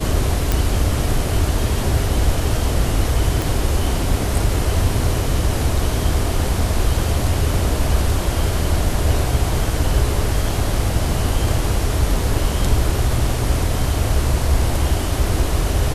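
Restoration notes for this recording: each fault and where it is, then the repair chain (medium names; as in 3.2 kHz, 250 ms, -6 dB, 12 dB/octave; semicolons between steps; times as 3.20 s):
0.52 s: pop
3.42 s: pop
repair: de-click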